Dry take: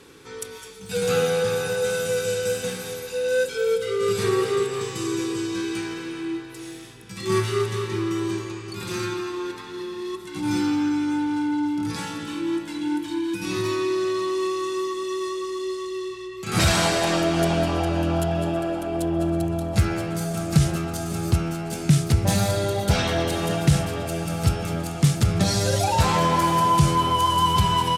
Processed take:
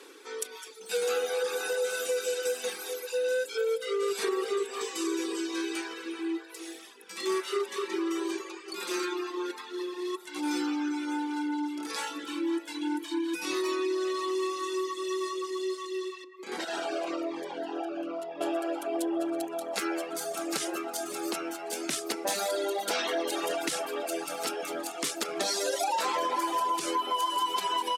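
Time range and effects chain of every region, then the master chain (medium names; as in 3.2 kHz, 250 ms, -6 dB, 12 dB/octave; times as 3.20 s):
16.24–18.41 s: low-pass 1.6 kHz 6 dB/octave + compression 2.5:1, threshold -25 dBFS + Shepard-style phaser falling 1 Hz
whole clip: steep high-pass 300 Hz 36 dB/octave; reverb removal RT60 1 s; compression, threshold -26 dBFS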